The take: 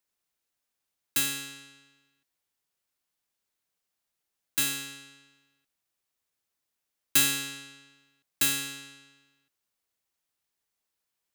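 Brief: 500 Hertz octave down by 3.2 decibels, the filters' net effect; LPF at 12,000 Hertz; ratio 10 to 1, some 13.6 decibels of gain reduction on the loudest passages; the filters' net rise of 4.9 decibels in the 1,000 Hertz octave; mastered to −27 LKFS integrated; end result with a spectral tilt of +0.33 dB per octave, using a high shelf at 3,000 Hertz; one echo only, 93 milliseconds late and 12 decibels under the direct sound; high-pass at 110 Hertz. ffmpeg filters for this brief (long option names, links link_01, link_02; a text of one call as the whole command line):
ffmpeg -i in.wav -af "highpass=110,lowpass=12000,equalizer=frequency=500:width_type=o:gain=-5.5,equalizer=frequency=1000:width_type=o:gain=6.5,highshelf=frequency=3000:gain=8.5,acompressor=threshold=-27dB:ratio=10,aecho=1:1:93:0.251,volume=4.5dB" out.wav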